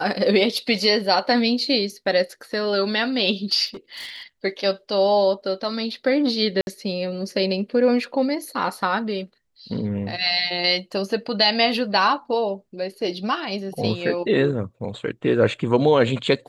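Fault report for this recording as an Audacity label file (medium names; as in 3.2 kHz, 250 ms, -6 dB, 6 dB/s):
3.660000	4.230000	clipped -31 dBFS
6.610000	6.670000	dropout 61 ms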